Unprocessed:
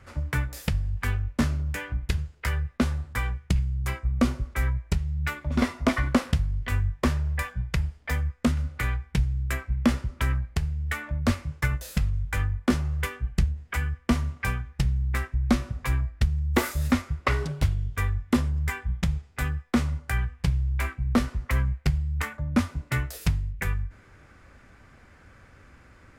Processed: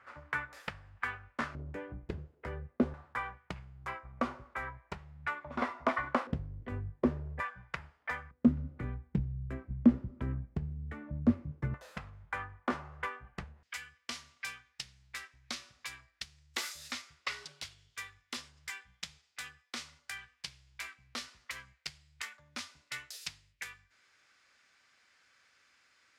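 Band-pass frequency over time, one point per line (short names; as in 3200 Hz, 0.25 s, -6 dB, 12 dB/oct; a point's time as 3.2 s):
band-pass, Q 1.3
1300 Hz
from 1.55 s 400 Hz
from 2.94 s 1000 Hz
from 6.27 s 350 Hz
from 7.4 s 1200 Hz
from 8.31 s 250 Hz
from 11.74 s 1000 Hz
from 13.63 s 4700 Hz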